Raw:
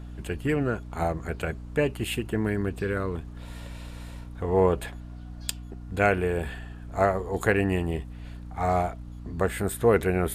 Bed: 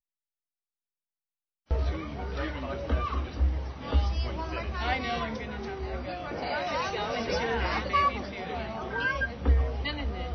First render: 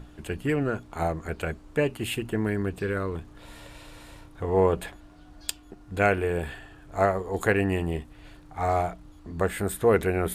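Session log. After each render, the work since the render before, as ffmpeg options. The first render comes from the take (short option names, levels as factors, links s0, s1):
-af "bandreject=f=60:t=h:w=6,bandreject=f=120:t=h:w=6,bandreject=f=180:t=h:w=6,bandreject=f=240:t=h:w=6"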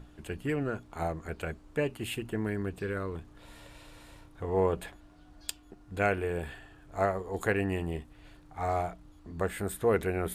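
-af "volume=0.531"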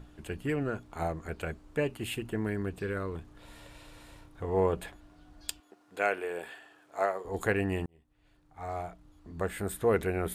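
-filter_complex "[0:a]asettb=1/sr,asplit=3[s0][s1][s2];[s0]atrim=end=5.604[s3];[s1]atrim=start=5.6:end=7.25,asetpts=PTS-STARTPTS,afade=t=in:d=0.004:c=qsin,afade=t=out:st=1.646:d=0.004:c=qsin,highpass=420[s4];[s2]atrim=start=7.246[s5];[s3][s4]acrossfade=d=0.004:c1=hsin:c2=qsin[s6];[s6][s5]acrossfade=d=0.004:c1=qsin:c2=hsin,asplit=2[s7][s8];[s7]atrim=end=7.86,asetpts=PTS-STARTPTS,afade=t=out:st=7.856:d=0.004:c=hsin[s9];[s8]atrim=start=7.86,asetpts=PTS-STARTPTS,afade=t=in:d=1.87[s10];[s9][s10]concat=n=2:v=0:a=1"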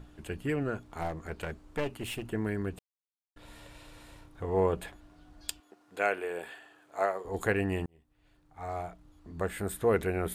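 -filter_complex "[0:a]asettb=1/sr,asplit=3[s0][s1][s2];[s0]atrim=end=0.874[s3];[s1]atrim=start=0.87:end=2.24,asetpts=PTS-STARTPTS,afade=t=in:d=0.004:c=qsin,afade=t=out:st=1.366:d=0.004:c=qsin,aeval=exprs='clip(val(0),-1,0.0141)':c=same[s4];[s2]atrim=start=2.236[s5];[s3][s4]acrossfade=d=0.004:c1=hsin:c2=qsin[s6];[s6][s5]acrossfade=d=0.004:c1=qsin:c2=hsin,asettb=1/sr,asplit=3[s7][s8][s9];[s7]atrim=end=6.024[s10];[s8]atrim=start=6.02:end=7.11,asetpts=PTS-STARTPTS,afade=t=in:d=0.004:c=qsin,afade=t=out:st=1.086:d=0.004:c=qsin,bandreject=f=5400:w=12[s11];[s9]atrim=start=7.106[s12];[s10][s11]acrossfade=d=0.004:c1=hsin:c2=qsin[s13];[s13][s12]acrossfade=d=0.004:c1=qsin:c2=hsin,asplit=3[s14][s15][s16];[s14]atrim=end=2.79,asetpts=PTS-STARTPTS,afade=t=out:st=2.786:d=0.004:c=hsin[s17];[s15]atrim=start=2.79:end=3.36,asetpts=PTS-STARTPTS,volume=0[s18];[s16]atrim=start=3.36,asetpts=PTS-STARTPTS,afade=t=in:d=0.004:c=hsin[s19];[s17][s18][s19]concat=n=3:v=0:a=1"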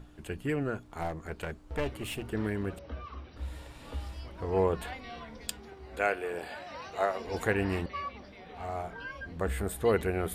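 -filter_complex "[1:a]volume=0.224[s0];[0:a][s0]amix=inputs=2:normalize=0"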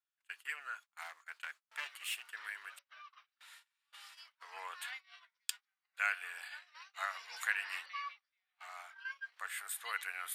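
-af "agate=range=0.0282:threshold=0.00891:ratio=16:detection=peak,highpass=f=1300:w=0.5412,highpass=f=1300:w=1.3066"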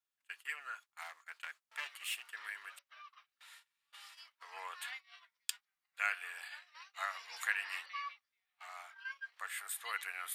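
-af "bandreject=f=1500:w=21"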